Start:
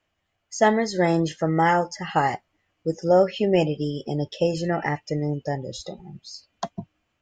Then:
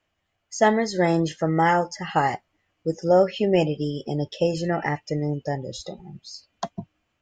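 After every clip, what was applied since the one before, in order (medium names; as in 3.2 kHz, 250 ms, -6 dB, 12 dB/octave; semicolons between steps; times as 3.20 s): no audible change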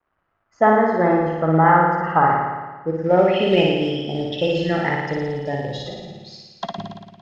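flutter echo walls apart 9.7 m, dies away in 1.3 s; companded quantiser 6-bit; low-pass sweep 1.3 kHz -> 3.2 kHz, 2.88–3.53 s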